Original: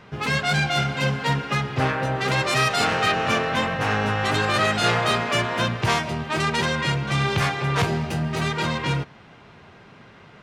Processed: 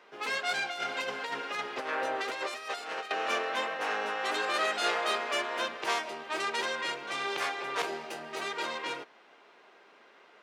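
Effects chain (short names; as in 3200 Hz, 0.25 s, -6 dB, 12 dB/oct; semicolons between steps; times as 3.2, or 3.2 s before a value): HPF 340 Hz 24 dB/oct; 0.7–3.11 negative-ratio compressor -26 dBFS, ratio -0.5; gain -8 dB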